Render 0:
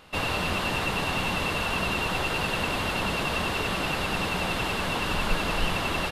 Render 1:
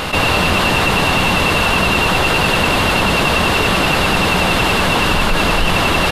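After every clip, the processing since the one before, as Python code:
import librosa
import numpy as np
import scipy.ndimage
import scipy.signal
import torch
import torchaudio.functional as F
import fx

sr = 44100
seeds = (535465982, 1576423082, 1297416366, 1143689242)

y = fx.env_flatten(x, sr, amount_pct=70)
y = y * librosa.db_to_amplitude(7.5)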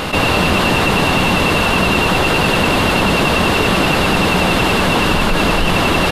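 y = fx.peak_eq(x, sr, hz=270.0, db=4.5, octaves=2.1)
y = y * librosa.db_to_amplitude(-1.0)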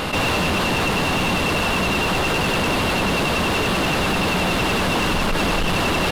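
y = fx.rider(x, sr, range_db=10, speed_s=0.5)
y = np.clip(10.0 ** (12.5 / 20.0) * y, -1.0, 1.0) / 10.0 ** (12.5 / 20.0)
y = y * librosa.db_to_amplitude(-4.0)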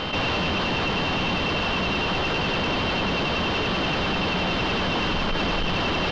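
y = scipy.signal.sosfilt(scipy.signal.butter(6, 5600.0, 'lowpass', fs=sr, output='sos'), x)
y = y + 10.0 ** (-29.0 / 20.0) * np.sin(2.0 * np.pi * 3100.0 * np.arange(len(y)) / sr)
y = y * librosa.db_to_amplitude(-4.5)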